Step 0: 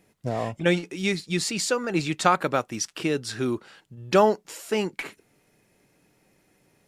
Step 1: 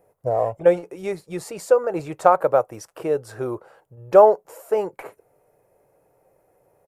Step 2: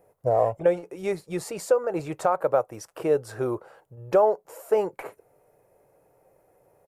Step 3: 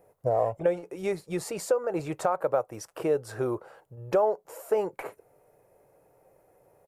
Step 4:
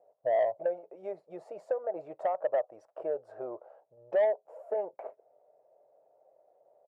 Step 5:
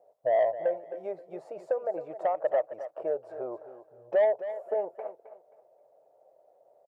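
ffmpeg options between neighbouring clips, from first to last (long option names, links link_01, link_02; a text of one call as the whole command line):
ffmpeg -i in.wav -af "firequalizer=gain_entry='entry(120,0);entry(220,-11);entry(500,12);entry(1800,-7);entry(3500,-17);entry(12000,1)':delay=0.05:min_phase=1,volume=-1dB" out.wav
ffmpeg -i in.wav -af "alimiter=limit=-10.5dB:level=0:latency=1:release=440" out.wav
ffmpeg -i in.wav -af "acompressor=threshold=-27dB:ratio=1.5" out.wav
ffmpeg -i in.wav -af "bandpass=frequency=640:width_type=q:width=6:csg=0,asoftclip=type=tanh:threshold=-23.5dB,volume=4dB" out.wav
ffmpeg -i in.wav -af "aecho=1:1:265|530|795:0.237|0.0617|0.016,volume=2.5dB" out.wav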